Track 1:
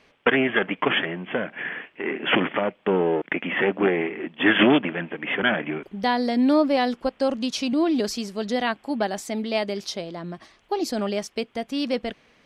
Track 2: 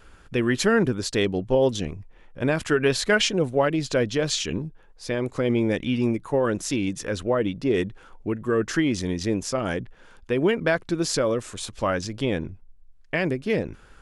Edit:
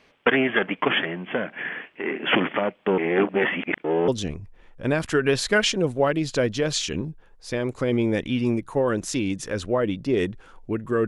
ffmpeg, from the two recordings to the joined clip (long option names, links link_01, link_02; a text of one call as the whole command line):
ffmpeg -i cue0.wav -i cue1.wav -filter_complex "[0:a]apad=whole_dur=11.07,atrim=end=11.07,asplit=2[link_01][link_02];[link_01]atrim=end=2.982[link_03];[link_02]atrim=start=2.978:end=4.082,asetpts=PTS-STARTPTS,areverse[link_04];[1:a]atrim=start=1.648:end=8.64[link_05];[link_03][link_04]acrossfade=duration=0.004:curve1=hsin:curve2=hsin[link_06];[link_06][link_05]acrossfade=duration=0.004:curve1=hsin:curve2=hsin" out.wav